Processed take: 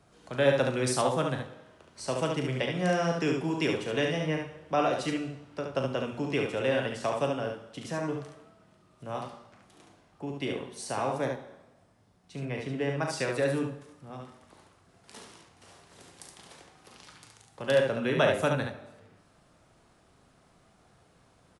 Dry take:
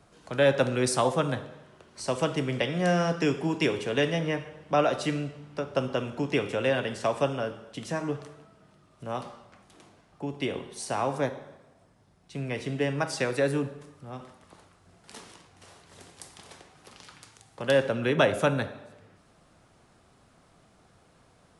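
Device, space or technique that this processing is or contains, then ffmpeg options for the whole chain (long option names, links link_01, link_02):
slapback doubling: -filter_complex "[0:a]asplit=3[link_01][link_02][link_03];[link_02]adelay=38,volume=-9dB[link_04];[link_03]adelay=71,volume=-4.5dB[link_05];[link_01][link_04][link_05]amix=inputs=3:normalize=0,asettb=1/sr,asplit=3[link_06][link_07][link_08];[link_06]atrim=end=12.454[link_09];[link_07]atrim=start=12.45:end=13.03,asetpts=PTS-STARTPTS,afade=type=in:duration=0.004:curve=qsin,afade=type=out:start_time=0.576:duration=0.004:curve=qsin,highshelf=frequency=4600:gain=-8[link_10];[link_08]atrim=start=13.026[link_11];[link_09][link_10]acrossfade=duration=0.004:curve1=hsin:curve2=qsin[link_12];[link_12][link_11]acrossfade=duration=0.004:curve1=qsin:curve2=hsin,volume=-3.5dB"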